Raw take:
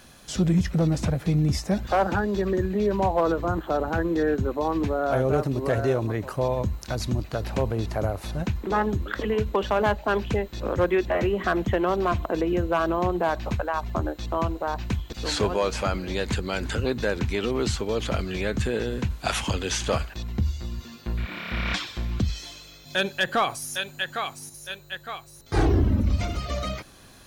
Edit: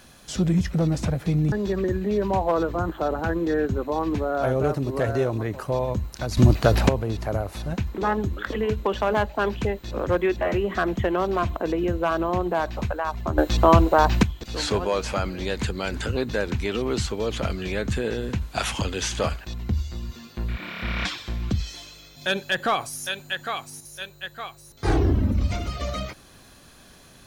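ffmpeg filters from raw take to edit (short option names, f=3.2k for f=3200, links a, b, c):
-filter_complex "[0:a]asplit=6[a][b][c][d][e][f];[a]atrim=end=1.522[g];[b]atrim=start=2.208:end=7.062[h];[c]atrim=start=7.058:end=7.582,asetpts=PTS-STARTPTS,volume=11dB[i];[d]atrim=start=7.578:end=14.072[j];[e]atrim=start=14.068:end=14.922,asetpts=PTS-STARTPTS,volume=11dB[k];[f]atrim=start=14.918[l];[g][h]acrossfade=d=0.004:c1=hsin:c2=hsin[m];[m][i]acrossfade=d=0.004:c1=hsin:c2=hsin[n];[n][j]acrossfade=d=0.004:c1=hsin:c2=hsin[o];[o][k]acrossfade=d=0.004:c1=hsin:c2=hsin[p];[p][l]acrossfade=d=0.004:c1=hsin:c2=hsin"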